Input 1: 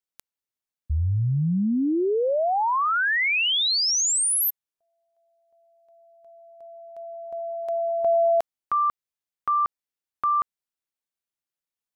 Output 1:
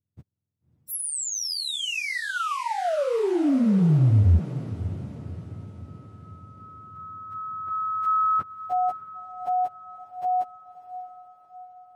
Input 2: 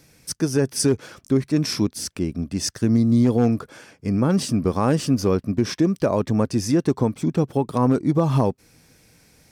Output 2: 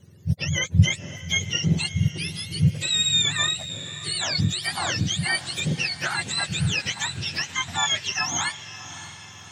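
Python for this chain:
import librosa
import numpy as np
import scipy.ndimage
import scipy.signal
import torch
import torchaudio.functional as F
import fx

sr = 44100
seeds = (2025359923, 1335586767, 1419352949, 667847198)

y = fx.octave_mirror(x, sr, pivot_hz=930.0)
y = fx.echo_diffused(y, sr, ms=593, feedback_pct=52, wet_db=-13.5)
y = y * librosa.db_to_amplitude(-1.5)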